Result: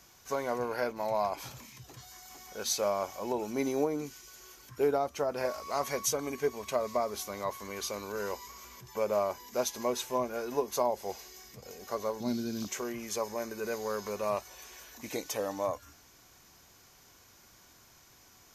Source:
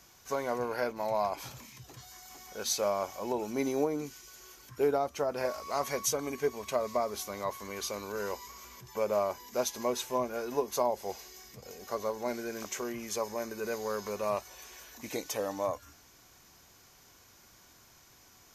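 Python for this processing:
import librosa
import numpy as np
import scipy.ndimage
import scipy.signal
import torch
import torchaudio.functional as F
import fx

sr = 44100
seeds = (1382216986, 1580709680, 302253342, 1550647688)

y = fx.graphic_eq(x, sr, hz=(125, 250, 500, 1000, 2000, 4000, 8000), db=(10, 9, -9, -4, -11, 10, -4), at=(12.2, 12.68))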